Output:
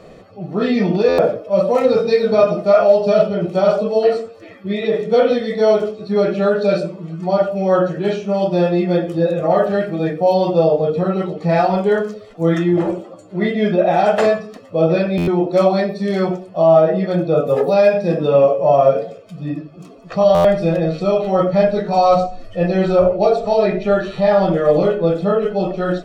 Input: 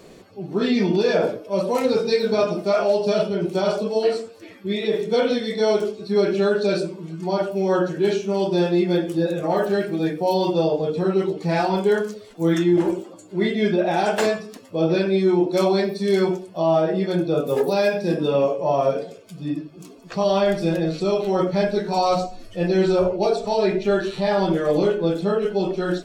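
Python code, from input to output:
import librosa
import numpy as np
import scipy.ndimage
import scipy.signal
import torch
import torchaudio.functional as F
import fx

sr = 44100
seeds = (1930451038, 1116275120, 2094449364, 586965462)

y = fx.lowpass(x, sr, hz=1600.0, slope=6)
y = fx.low_shelf(y, sr, hz=190.0, db=-2.5)
y = fx.notch(y, sr, hz=390.0, q=12.0)
y = y + 0.42 * np.pad(y, (int(1.6 * sr / 1000.0), 0))[:len(y)]
y = fx.buffer_glitch(y, sr, at_s=(1.08, 15.17, 20.34), block=512, repeats=8)
y = F.gain(torch.from_numpy(y), 6.5).numpy()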